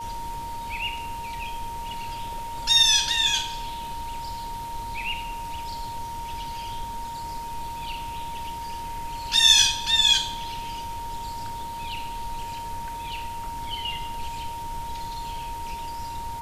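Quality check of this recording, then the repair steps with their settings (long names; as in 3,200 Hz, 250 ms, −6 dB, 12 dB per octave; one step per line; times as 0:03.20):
whistle 930 Hz −32 dBFS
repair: notch filter 930 Hz, Q 30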